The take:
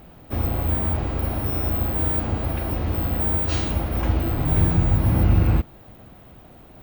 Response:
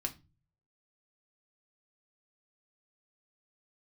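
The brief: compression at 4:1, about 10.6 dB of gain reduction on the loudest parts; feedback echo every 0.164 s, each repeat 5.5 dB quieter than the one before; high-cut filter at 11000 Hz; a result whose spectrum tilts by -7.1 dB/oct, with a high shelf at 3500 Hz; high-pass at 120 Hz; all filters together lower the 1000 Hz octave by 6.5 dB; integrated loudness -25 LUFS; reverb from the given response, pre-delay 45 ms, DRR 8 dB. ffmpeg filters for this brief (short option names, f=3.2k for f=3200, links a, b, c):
-filter_complex "[0:a]highpass=120,lowpass=11k,equalizer=f=1k:t=o:g=-9,highshelf=f=3.5k:g=-4,acompressor=threshold=-32dB:ratio=4,aecho=1:1:164|328|492|656|820|984|1148:0.531|0.281|0.149|0.079|0.0419|0.0222|0.0118,asplit=2[a][b];[1:a]atrim=start_sample=2205,adelay=45[c];[b][c]afir=irnorm=-1:irlink=0,volume=-9dB[d];[a][d]amix=inputs=2:normalize=0,volume=8.5dB"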